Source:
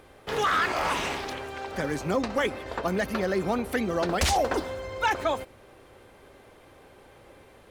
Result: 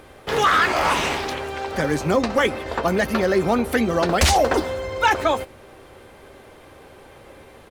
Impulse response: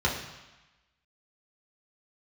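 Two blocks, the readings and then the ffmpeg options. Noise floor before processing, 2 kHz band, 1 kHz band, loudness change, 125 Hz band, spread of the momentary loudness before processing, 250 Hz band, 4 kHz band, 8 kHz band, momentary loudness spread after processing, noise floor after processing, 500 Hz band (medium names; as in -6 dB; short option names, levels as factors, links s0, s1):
-54 dBFS, +7.0 dB, +7.0 dB, +7.0 dB, +7.5 dB, 10 LU, +7.0 dB, +7.5 dB, +7.0 dB, 10 LU, -47 dBFS, +7.0 dB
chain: -filter_complex "[0:a]asplit=2[s0][s1];[s1]adelay=13,volume=0.251[s2];[s0][s2]amix=inputs=2:normalize=0,volume=2.24"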